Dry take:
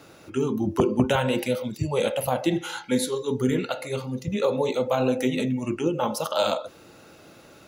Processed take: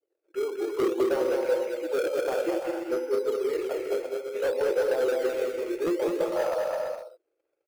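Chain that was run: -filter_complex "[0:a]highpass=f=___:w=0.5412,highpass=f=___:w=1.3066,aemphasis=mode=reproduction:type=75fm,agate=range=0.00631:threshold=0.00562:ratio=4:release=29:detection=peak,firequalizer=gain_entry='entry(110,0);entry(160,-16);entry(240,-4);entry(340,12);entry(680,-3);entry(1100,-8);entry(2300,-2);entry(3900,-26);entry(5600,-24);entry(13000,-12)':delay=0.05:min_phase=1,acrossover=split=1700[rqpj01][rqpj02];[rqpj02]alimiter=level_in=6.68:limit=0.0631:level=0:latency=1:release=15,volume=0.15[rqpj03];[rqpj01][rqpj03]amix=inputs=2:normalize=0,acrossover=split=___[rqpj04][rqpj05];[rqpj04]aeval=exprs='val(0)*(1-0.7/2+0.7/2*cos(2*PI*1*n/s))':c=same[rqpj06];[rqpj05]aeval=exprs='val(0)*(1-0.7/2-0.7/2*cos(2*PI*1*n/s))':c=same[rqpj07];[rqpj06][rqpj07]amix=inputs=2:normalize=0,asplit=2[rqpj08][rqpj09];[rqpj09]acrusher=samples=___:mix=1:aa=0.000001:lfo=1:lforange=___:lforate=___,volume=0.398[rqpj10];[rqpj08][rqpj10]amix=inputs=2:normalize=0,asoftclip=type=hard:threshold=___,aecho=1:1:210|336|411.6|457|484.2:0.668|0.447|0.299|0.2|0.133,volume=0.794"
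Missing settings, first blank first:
460, 460, 540, 16, 16, 0.58, 0.0891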